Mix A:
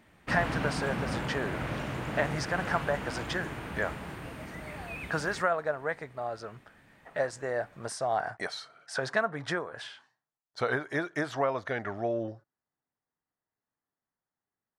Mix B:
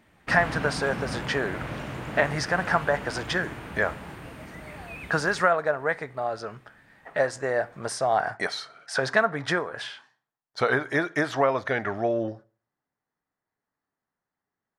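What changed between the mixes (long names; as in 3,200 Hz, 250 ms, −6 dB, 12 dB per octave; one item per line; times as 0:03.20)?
speech +4.5 dB
reverb: on, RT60 0.45 s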